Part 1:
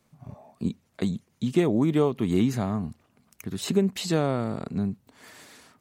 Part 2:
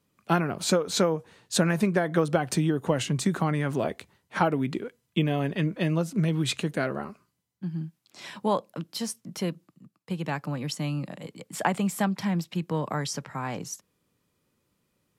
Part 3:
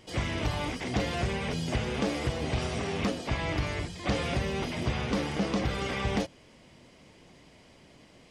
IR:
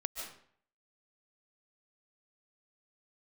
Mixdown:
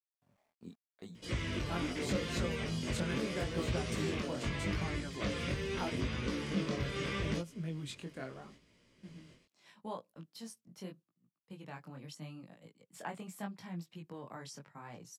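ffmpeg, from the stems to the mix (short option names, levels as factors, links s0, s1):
-filter_complex "[0:a]highpass=f=260:p=1,aeval=exprs='val(0)*gte(abs(val(0)),0.00355)':c=same,volume=0.178[s0];[1:a]adelay=1400,volume=0.211[s1];[2:a]equalizer=f=770:t=o:w=0.44:g=-14,adelay=1150,volume=0.891[s2];[s0][s2]amix=inputs=2:normalize=0,alimiter=limit=0.0708:level=0:latency=1:release=262,volume=1[s3];[s1][s3]amix=inputs=2:normalize=0,agate=range=0.447:threshold=0.002:ratio=16:detection=peak,flanger=delay=17:depth=6.3:speed=0.8"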